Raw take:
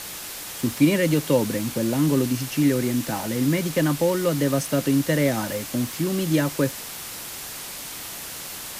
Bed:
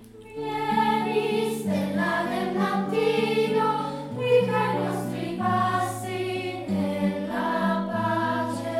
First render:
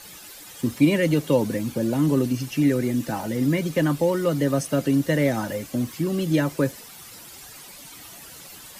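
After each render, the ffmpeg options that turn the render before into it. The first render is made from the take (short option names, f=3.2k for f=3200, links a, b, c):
-af "afftdn=nr=12:nf=-36"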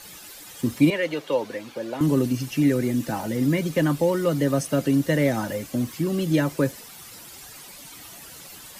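-filter_complex "[0:a]asettb=1/sr,asplit=3[a][b][c];[a]atrim=end=0.904[d];[b]atrim=start=0.9:end=2.01,asetpts=PTS-STARTPTS,afade=t=in:d=0.004:c=qsin,afade=t=out:st=1.106:d=0.004:c=qsin,acrossover=split=400 5000:gain=0.112 1 0.224[e][f][g];[e][f][g]amix=inputs=3:normalize=0[h];[c]atrim=start=2.006[i];[d][h]acrossfade=d=0.004:c1=hsin:c2=qsin[j];[j][i]acrossfade=d=0.004:c1=qsin:c2=hsin"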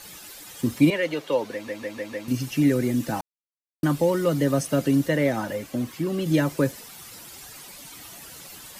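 -filter_complex "[0:a]asettb=1/sr,asplit=3[a][b][c];[a]atrim=end=5.084[d];[b]atrim=start=5.08:end=6.26,asetpts=PTS-STARTPTS,afade=t=in:d=0.004:c=qsin,afade=t=out:st=1.176:d=0.004:c=qsin,bass=f=250:g=-4,treble=f=4k:g=-5[e];[c]atrim=start=6.256[f];[d][e]acrossfade=d=0.004:c1=hsin:c2=qsin[g];[g][f]acrossfade=d=0.004:c1=qsin:c2=hsin,asplit=8[h][i][j][k][l][m][n][o];[h]atrim=end=1.682[p];[i]atrim=start=1.528:end=1.682[q];[j]atrim=start=1.528:end=1.682[r];[k]atrim=start=1.528:end=1.682[s];[l]atrim=start=1.528:end=1.682[t];[m]atrim=start=2.278:end=3.21,asetpts=PTS-STARTPTS,afade=t=out:st=0.928:d=0.004:c=hsin[u];[n]atrim=start=3.21:end=3.83,asetpts=PTS-STARTPTS,volume=0[v];[o]atrim=start=3.83,asetpts=PTS-STARTPTS,afade=t=in:d=0.004:c=hsin[w];[p][q]acrossfade=d=0.004:c1=hsin:c2=hsin[x];[x][r]acrossfade=d=0.004:c1=hsin:c2=hsin[y];[y][s]acrossfade=d=0.004:c1=hsin:c2=hsin[z];[z][t]acrossfade=d=0.004:c1=hsin:c2=hsin[aa];[u][v][w]concat=n=3:v=0:a=1[ab];[aa][ab]acrossfade=d=0.004:c1=hsin:c2=hsin"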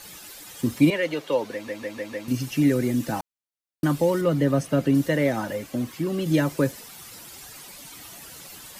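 -filter_complex "[0:a]asettb=1/sr,asplit=3[a][b][c];[a]atrim=end=4.214[d];[b]atrim=start=4.21:end=4.95,asetpts=PTS-STARTPTS,afade=t=in:d=0.004:c=qsin,afade=t=out:st=0.736:d=0.004:c=qsin,bass=f=250:g=2,treble=f=4k:g=-8[e];[c]atrim=start=4.946[f];[d][e]acrossfade=d=0.004:c1=hsin:c2=qsin[g];[g][f]acrossfade=d=0.004:c1=qsin:c2=hsin"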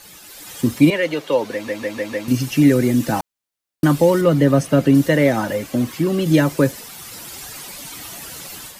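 -af "dynaudnorm=f=270:g=3:m=8.5dB"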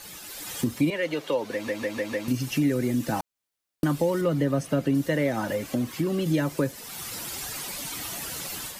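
-af "acompressor=threshold=-29dB:ratio=2"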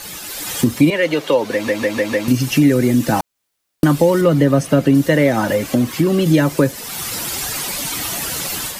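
-af "volume=11dB"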